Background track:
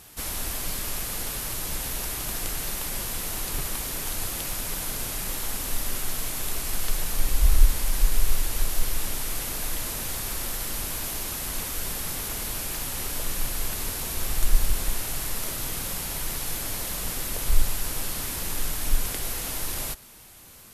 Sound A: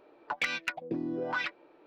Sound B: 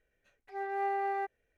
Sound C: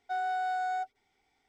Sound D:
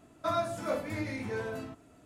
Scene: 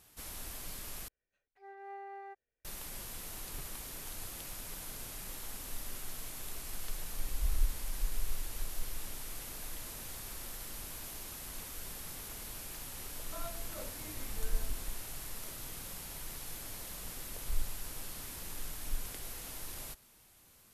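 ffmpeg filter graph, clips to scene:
ffmpeg -i bed.wav -i cue0.wav -i cue1.wav -i cue2.wav -i cue3.wav -filter_complex "[0:a]volume=-13.5dB,asplit=2[link_01][link_02];[link_01]atrim=end=1.084[link_03];[2:a]atrim=end=1.57,asetpts=PTS-STARTPTS,volume=-14dB[link_04];[link_02]atrim=start=2.646[link_05];[4:a]atrim=end=2.05,asetpts=PTS-STARTPTS,volume=-16dB,afade=type=in:duration=0.004:curve=hsin,afade=type=out:start_time=2.046:duration=0.004:curve=hsin,adelay=13080[link_06];[link_03][link_04]acrossfade=duration=0.004:curve1=hsin:curve2=hsin[link_07];[link_07][link_05]acrossfade=duration=0.004:curve1=hsin:curve2=hsin[link_08];[link_08][link_06]amix=inputs=2:normalize=0" out.wav

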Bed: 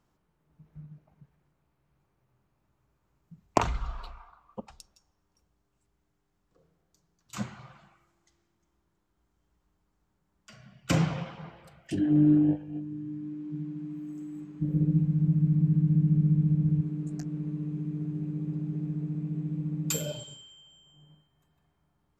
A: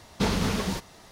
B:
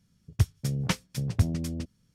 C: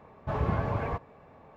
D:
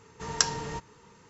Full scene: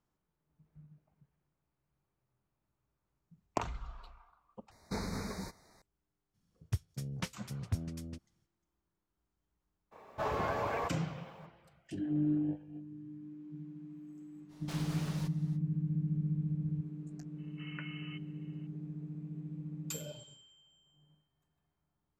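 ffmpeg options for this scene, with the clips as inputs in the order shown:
ffmpeg -i bed.wav -i cue0.wav -i cue1.wav -i cue2.wav -i cue3.wav -filter_complex "[1:a]asplit=2[link_01][link_02];[0:a]volume=-10.5dB[link_03];[link_01]asuperstop=centerf=3000:order=12:qfactor=2.2[link_04];[3:a]bass=frequency=250:gain=-14,treble=frequency=4000:gain=11[link_05];[link_02]aeval=exprs='0.0473*(abs(mod(val(0)/0.0473+3,4)-2)-1)':channel_layout=same[link_06];[4:a]lowpass=frequency=2600:width_type=q:width=0.5098,lowpass=frequency=2600:width_type=q:width=0.6013,lowpass=frequency=2600:width_type=q:width=0.9,lowpass=frequency=2600:width_type=q:width=2.563,afreqshift=-3100[link_07];[link_03]asplit=2[link_08][link_09];[link_08]atrim=end=4.714[link_10];[link_04]atrim=end=1.11,asetpts=PTS-STARTPTS,volume=-12.5dB[link_11];[link_09]atrim=start=5.816[link_12];[2:a]atrim=end=2.14,asetpts=PTS-STARTPTS,volume=-11dB,afade=type=in:duration=0.02,afade=type=out:start_time=2.12:duration=0.02,adelay=6330[link_13];[link_05]atrim=end=1.56,asetpts=PTS-STARTPTS,volume=-0.5dB,afade=type=in:duration=0.02,afade=type=out:start_time=1.54:duration=0.02,adelay=9910[link_14];[link_06]atrim=end=1.11,asetpts=PTS-STARTPTS,volume=-13.5dB,afade=type=in:duration=0.05,afade=type=out:start_time=1.06:duration=0.05,adelay=14480[link_15];[link_07]atrim=end=1.29,asetpts=PTS-STARTPTS,volume=-15dB,afade=type=in:duration=0.004:curve=hsin,afade=type=out:start_time=1.286:duration=0.004:curve=hsin,adelay=17380[link_16];[link_10][link_11]acrossfade=duration=0.004:curve1=hsin:curve2=hsin[link_17];[link_17][link_12]acrossfade=duration=0.004:curve1=hsin:curve2=hsin[link_18];[link_18][link_13][link_14][link_15][link_16]amix=inputs=5:normalize=0" out.wav

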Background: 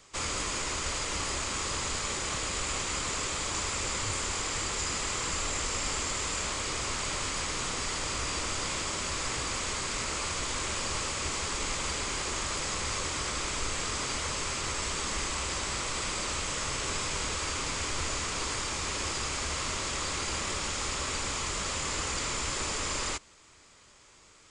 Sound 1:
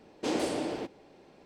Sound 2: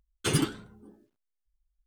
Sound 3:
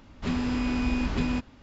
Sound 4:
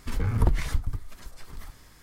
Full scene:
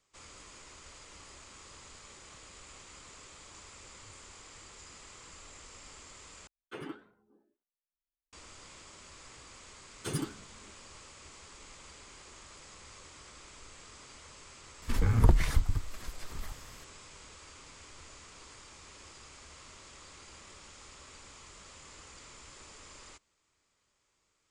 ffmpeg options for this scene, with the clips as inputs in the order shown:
ffmpeg -i bed.wav -i cue0.wav -i cue1.wav -i cue2.wav -i cue3.wav -filter_complex "[2:a]asplit=2[link_01][link_02];[0:a]volume=-19.5dB[link_03];[link_01]acrossover=split=260 2500:gain=0.141 1 0.0794[link_04][link_05][link_06];[link_04][link_05][link_06]amix=inputs=3:normalize=0[link_07];[link_02]equalizer=frequency=2700:width=1.5:gain=-5.5[link_08];[link_03]asplit=2[link_09][link_10];[link_09]atrim=end=6.474[link_11];[link_07]atrim=end=1.86,asetpts=PTS-STARTPTS,volume=-11dB[link_12];[link_10]atrim=start=8.326[link_13];[link_08]atrim=end=1.86,asetpts=PTS-STARTPTS,volume=-8.5dB,afade=type=in:duration=0.004:curve=hsin,afade=type=out:start_time=1.856:duration=0.004:curve=hsin,adelay=9800[link_14];[4:a]atrim=end=2.02,asetpts=PTS-STARTPTS,afade=type=in:duration=0.004:curve=hsin,afade=type=out:start_time=2.016:duration=0.004:curve=hsin,adelay=14820[link_15];[link_11][link_12]acrossfade=duration=0.004:curve1=hsin:curve2=hsin[link_16];[link_16][link_13]acrossfade=duration=0.004:curve1=hsin:curve2=hsin[link_17];[link_17][link_14][link_15]amix=inputs=3:normalize=0" out.wav

